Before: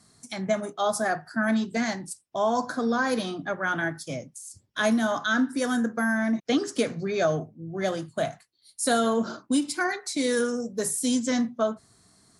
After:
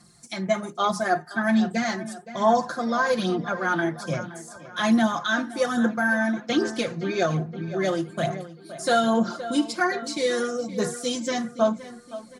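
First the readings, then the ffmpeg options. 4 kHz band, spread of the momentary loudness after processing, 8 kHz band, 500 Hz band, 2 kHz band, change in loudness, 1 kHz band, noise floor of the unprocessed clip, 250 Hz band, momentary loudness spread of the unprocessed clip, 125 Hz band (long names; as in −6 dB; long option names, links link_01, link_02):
+2.5 dB, 10 LU, −3.5 dB, +2.0 dB, +2.0 dB, +2.0 dB, +4.0 dB, −65 dBFS, +1.5 dB, 10 LU, +5.0 dB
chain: -filter_complex "[0:a]acrossover=split=6700[link_01][link_02];[link_02]acompressor=threshold=-51dB:ratio=4:attack=1:release=60[link_03];[link_01][link_03]amix=inputs=2:normalize=0,aecho=1:1:5.7:0.76,asplit=2[link_04][link_05];[link_05]adelay=519,lowpass=frequency=3600:poles=1,volume=-14dB,asplit=2[link_06][link_07];[link_07]adelay=519,lowpass=frequency=3600:poles=1,volume=0.52,asplit=2[link_08][link_09];[link_09]adelay=519,lowpass=frequency=3600:poles=1,volume=0.52,asplit=2[link_10][link_11];[link_11]adelay=519,lowpass=frequency=3600:poles=1,volume=0.52,asplit=2[link_12][link_13];[link_13]adelay=519,lowpass=frequency=3600:poles=1,volume=0.52[link_14];[link_04][link_06][link_08][link_10][link_12][link_14]amix=inputs=6:normalize=0,aphaser=in_gain=1:out_gain=1:delay=3.3:decay=0.39:speed=1.2:type=sinusoidal"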